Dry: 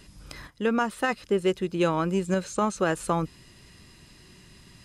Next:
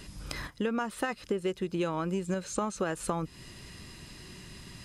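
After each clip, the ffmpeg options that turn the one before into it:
-af "acompressor=threshold=-33dB:ratio=6,volume=4.5dB"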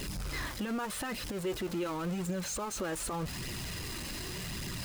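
-af "aeval=exprs='val(0)+0.5*0.0266*sgn(val(0))':c=same,alimiter=limit=-24dB:level=0:latency=1:release=11,flanger=delay=0.3:depth=3.5:regen=-42:speed=0.86:shape=triangular"

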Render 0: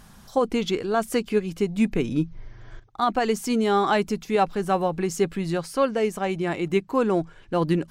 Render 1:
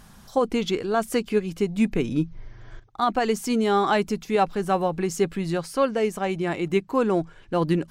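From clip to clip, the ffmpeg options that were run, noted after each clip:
-af anull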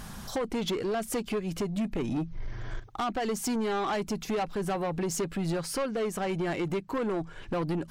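-af "acompressor=threshold=-31dB:ratio=4,asoftclip=type=tanh:threshold=-33dB,volume=7.5dB"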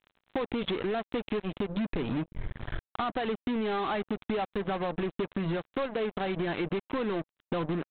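-af "aresample=8000,acrusher=bits=4:mix=0:aa=0.5,aresample=44100,acompressor=threshold=-30dB:ratio=6,volume=2dB"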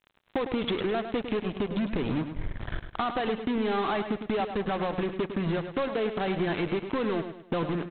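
-af "aecho=1:1:104|208|312|416:0.355|0.131|0.0486|0.018,volume=2dB"

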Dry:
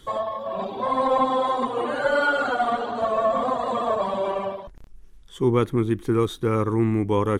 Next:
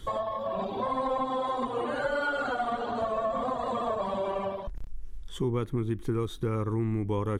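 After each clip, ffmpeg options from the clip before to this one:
-af "lowshelf=f=100:g=11.5,acompressor=threshold=-29dB:ratio=3"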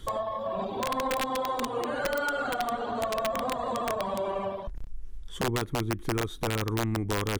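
-af "aeval=exprs='(mod(10.6*val(0)+1,2)-1)/10.6':c=same"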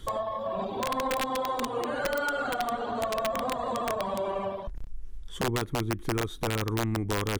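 -af anull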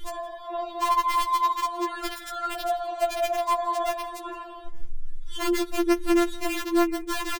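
-af "aecho=1:1:166:0.0944,afftfilt=real='re*4*eq(mod(b,16),0)':imag='im*4*eq(mod(b,16),0)':win_size=2048:overlap=0.75,volume=5dB"

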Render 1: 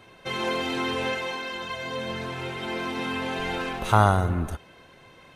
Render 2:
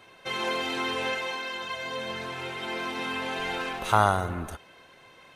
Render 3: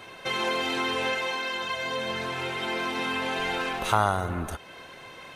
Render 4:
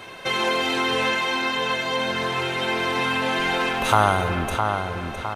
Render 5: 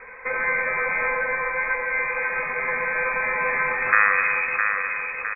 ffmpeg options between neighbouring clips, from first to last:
-af "lowshelf=f=320:g=-9.5"
-af "acompressor=threshold=-45dB:ratio=1.5,volume=8.5dB"
-filter_complex "[0:a]asplit=2[a][b];[b]adelay=660,lowpass=f=3.7k:p=1,volume=-5.5dB,asplit=2[c][d];[d]adelay=660,lowpass=f=3.7k:p=1,volume=0.5,asplit=2[e][f];[f]adelay=660,lowpass=f=3.7k:p=1,volume=0.5,asplit=2[g][h];[h]adelay=660,lowpass=f=3.7k:p=1,volume=0.5,asplit=2[i][j];[j]adelay=660,lowpass=f=3.7k:p=1,volume=0.5,asplit=2[k][l];[l]adelay=660,lowpass=f=3.7k:p=1,volume=0.5[m];[a][c][e][g][i][k][m]amix=inputs=7:normalize=0,volume=5dB"
-af "bandreject=f=50:t=h:w=6,bandreject=f=100:t=h:w=6,bandreject=f=150:t=h:w=6,bandreject=f=200:t=h:w=6,bandreject=f=250:t=h:w=6,bandreject=f=300:t=h:w=6,bandreject=f=350:t=h:w=6,aecho=1:1:251:0.355,lowpass=f=2.2k:t=q:w=0.5098,lowpass=f=2.2k:t=q:w=0.6013,lowpass=f=2.2k:t=q:w=0.9,lowpass=f=2.2k:t=q:w=2.563,afreqshift=-2600"

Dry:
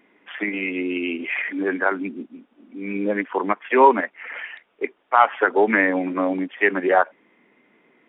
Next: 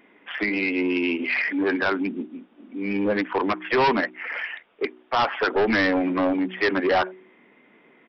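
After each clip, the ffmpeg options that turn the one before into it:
-af "bandreject=f=62.04:t=h:w=4,bandreject=f=124.08:t=h:w=4,bandreject=f=186.12:t=h:w=4,bandreject=f=248.16:t=h:w=4,bandreject=f=310.2:t=h:w=4,bandreject=f=372.24:t=h:w=4,aresample=11025,asoftclip=type=tanh:threshold=-20dB,aresample=44100,volume=3.5dB"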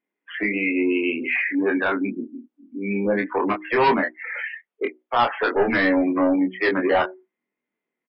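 -filter_complex "[0:a]afftdn=nr=31:nf=-31,asplit=2[a][b];[b]adelay=25,volume=-4dB[c];[a][c]amix=inputs=2:normalize=0"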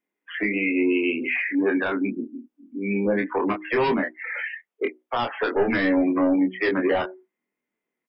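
-filter_complex "[0:a]bandreject=f=4.2k:w=7,acrossover=split=470|3000[a][b][c];[b]acompressor=threshold=-25dB:ratio=6[d];[a][d][c]amix=inputs=3:normalize=0"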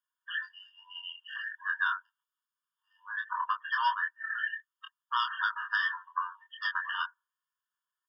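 -af "afftfilt=real='re*eq(mod(floor(b*sr/1024/920),2),1)':imag='im*eq(mod(floor(b*sr/1024/920),2),1)':win_size=1024:overlap=0.75"

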